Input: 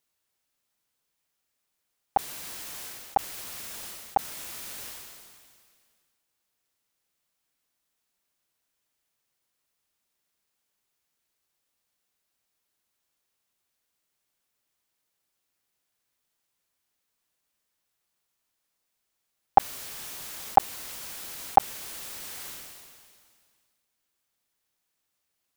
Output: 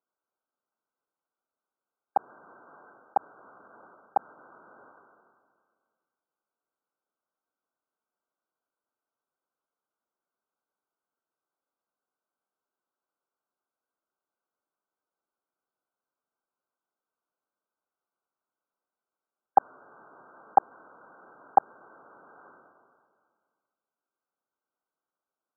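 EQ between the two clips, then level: high-pass 280 Hz 12 dB/octave; brick-wall FIR low-pass 1.6 kHz; -1.5 dB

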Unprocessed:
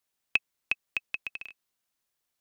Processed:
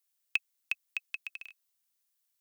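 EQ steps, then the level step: tilt EQ +3.5 dB/octave; -9.0 dB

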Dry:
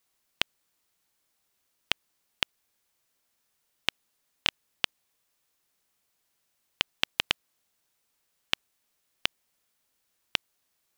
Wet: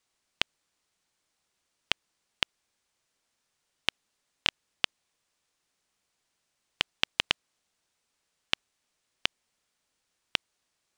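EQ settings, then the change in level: Savitzky-Golay filter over 9 samples; 0.0 dB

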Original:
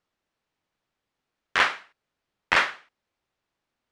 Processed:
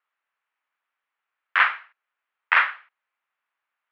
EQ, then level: Butterworth band-pass 1.8 kHz, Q 1; tilt EQ -3 dB/octave; +6.0 dB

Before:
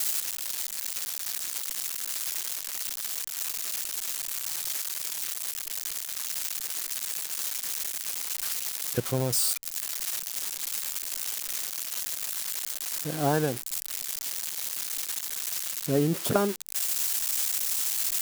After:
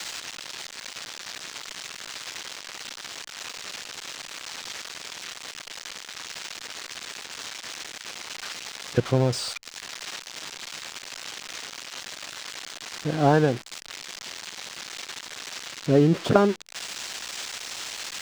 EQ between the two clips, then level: distance through air 150 m; +6.5 dB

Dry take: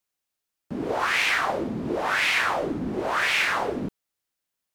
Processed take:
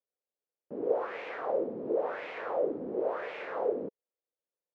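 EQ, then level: band-pass filter 490 Hz, Q 4.2; distance through air 75 m; +4.0 dB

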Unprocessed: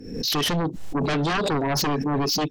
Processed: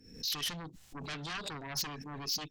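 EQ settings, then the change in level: amplifier tone stack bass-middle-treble 5-5-5; -2.5 dB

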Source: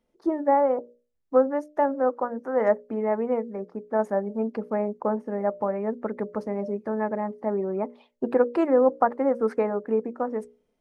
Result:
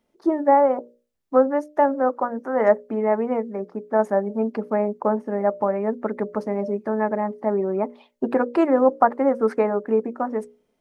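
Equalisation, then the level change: bass shelf 93 Hz -8.5 dB; band-stop 490 Hz, Q 12; +5.0 dB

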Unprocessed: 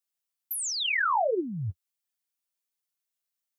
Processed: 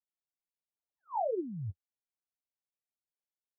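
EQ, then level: steep low-pass 930 Hz 72 dB/octave; -6.0 dB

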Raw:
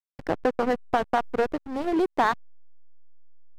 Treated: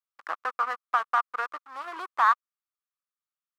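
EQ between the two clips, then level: resonant high-pass 1.2 kHz, resonance Q 6.5; -5.5 dB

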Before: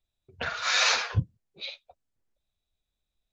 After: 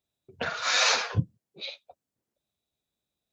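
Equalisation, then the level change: high-pass 150 Hz 12 dB/octave; tilt shelf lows +6 dB, about 1.1 kHz; treble shelf 3.3 kHz +9 dB; 0.0 dB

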